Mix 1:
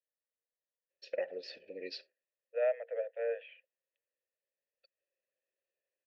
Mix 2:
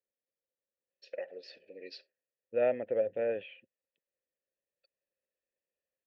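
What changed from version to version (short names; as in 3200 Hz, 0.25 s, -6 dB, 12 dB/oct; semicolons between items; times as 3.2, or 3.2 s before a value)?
first voice -4.0 dB; second voice: remove rippled Chebyshev high-pass 450 Hz, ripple 9 dB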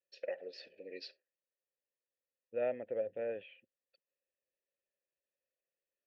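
first voice: entry -0.90 s; second voice -6.5 dB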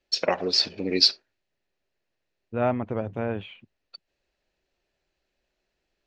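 first voice +9.0 dB; master: remove vowel filter e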